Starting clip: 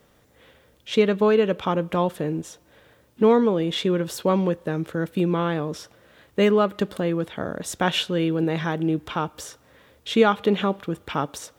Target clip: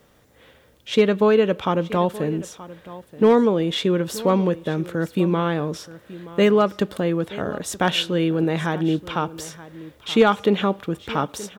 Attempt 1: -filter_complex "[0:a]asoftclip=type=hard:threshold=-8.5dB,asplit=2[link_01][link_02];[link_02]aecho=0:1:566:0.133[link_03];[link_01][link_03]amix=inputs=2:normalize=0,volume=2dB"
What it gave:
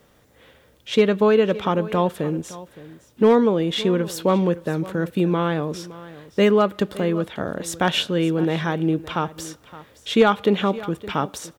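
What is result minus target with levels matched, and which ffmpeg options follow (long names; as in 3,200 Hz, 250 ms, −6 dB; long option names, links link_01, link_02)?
echo 361 ms early
-filter_complex "[0:a]asoftclip=type=hard:threshold=-8.5dB,asplit=2[link_01][link_02];[link_02]aecho=0:1:927:0.133[link_03];[link_01][link_03]amix=inputs=2:normalize=0,volume=2dB"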